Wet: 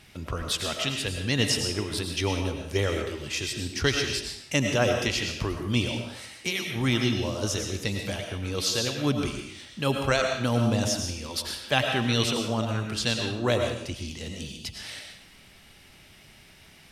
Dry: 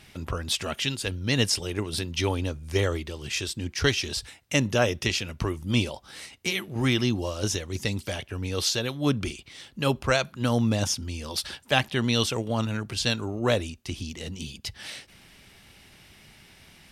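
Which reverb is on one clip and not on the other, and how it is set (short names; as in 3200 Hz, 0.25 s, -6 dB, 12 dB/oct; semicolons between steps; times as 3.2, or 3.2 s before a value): digital reverb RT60 0.7 s, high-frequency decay 0.95×, pre-delay 65 ms, DRR 3 dB; gain -1.5 dB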